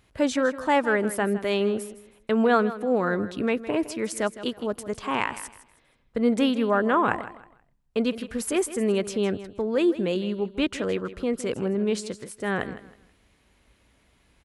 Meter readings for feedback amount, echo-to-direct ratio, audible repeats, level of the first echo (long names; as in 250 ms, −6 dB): 27%, −14.0 dB, 2, −14.5 dB